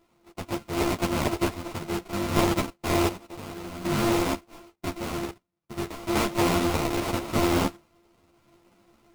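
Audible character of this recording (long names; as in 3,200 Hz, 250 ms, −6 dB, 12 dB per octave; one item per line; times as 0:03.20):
a buzz of ramps at a fixed pitch in blocks of 128 samples
sample-and-hold tremolo 1.3 Hz, depth 80%
aliases and images of a low sample rate 1,700 Hz, jitter 20%
a shimmering, thickened sound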